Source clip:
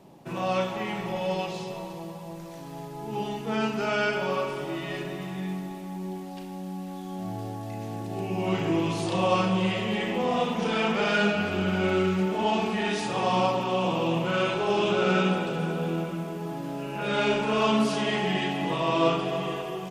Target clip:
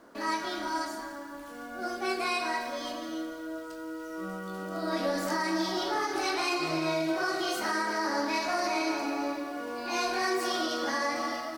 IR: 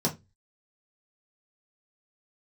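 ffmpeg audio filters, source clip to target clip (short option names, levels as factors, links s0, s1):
-af "asetrate=75852,aresample=44100,alimiter=limit=0.141:level=0:latency=1:release=95,volume=0.708"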